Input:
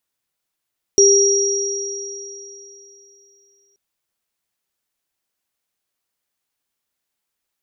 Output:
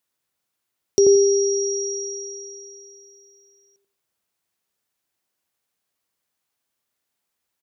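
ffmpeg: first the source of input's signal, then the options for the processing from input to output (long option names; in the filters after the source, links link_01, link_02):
-f lavfi -i "aevalsrc='0.316*pow(10,-3*t/2.98)*sin(2*PI*398*t)+0.335*pow(10,-3*t/3.33)*sin(2*PI*5690*t)':duration=2.78:sample_rate=44100"
-filter_complex "[0:a]highpass=60,acrossover=split=2000[link_01][link_02];[link_01]aecho=1:1:86|172|258|344:0.708|0.177|0.0442|0.0111[link_03];[link_02]acompressor=threshold=-26dB:ratio=6[link_04];[link_03][link_04]amix=inputs=2:normalize=0"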